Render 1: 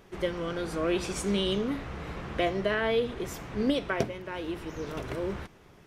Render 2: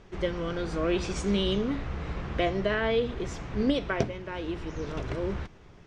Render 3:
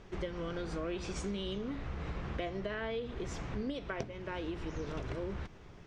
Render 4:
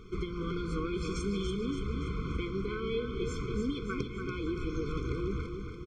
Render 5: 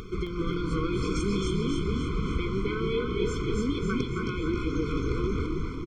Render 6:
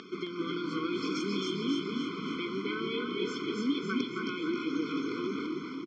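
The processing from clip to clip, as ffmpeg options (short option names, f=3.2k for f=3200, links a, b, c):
-af "lowpass=f=7.2k:w=0.5412,lowpass=f=7.2k:w=1.3066,lowshelf=f=97:g=10"
-af "acompressor=threshold=-34dB:ratio=6,volume=-1dB"
-af "aecho=1:1:286|572|858|1144|1430|1716|2002:0.473|0.26|0.143|0.0787|0.0433|0.0238|0.0131,afftfilt=real='re*eq(mod(floor(b*sr/1024/510),2),0)':imag='im*eq(mod(floor(b*sr/1024/510),2),0)':win_size=1024:overlap=0.75,volume=4.5dB"
-filter_complex "[0:a]acompressor=mode=upward:threshold=-39dB:ratio=2.5,asplit=2[a][b];[b]asplit=6[c][d][e][f][g][h];[c]adelay=266,afreqshift=-40,volume=-3.5dB[i];[d]adelay=532,afreqshift=-80,volume=-10.6dB[j];[e]adelay=798,afreqshift=-120,volume=-17.8dB[k];[f]adelay=1064,afreqshift=-160,volume=-24.9dB[l];[g]adelay=1330,afreqshift=-200,volume=-32dB[m];[h]adelay=1596,afreqshift=-240,volume=-39.2dB[n];[i][j][k][l][m][n]amix=inputs=6:normalize=0[o];[a][o]amix=inputs=2:normalize=0,volume=4dB"
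-af "highpass=f=210:w=0.5412,highpass=f=210:w=1.3066,equalizer=f=270:t=q:w=4:g=5,equalizer=f=470:t=q:w=4:g=-6,equalizer=f=790:t=q:w=4:g=-3,equalizer=f=1.7k:t=q:w=4:g=6,equalizer=f=3k:t=q:w=4:g=6,equalizer=f=5k:t=q:w=4:g=7,lowpass=f=6.3k:w=0.5412,lowpass=f=6.3k:w=1.3066,volume=-3dB"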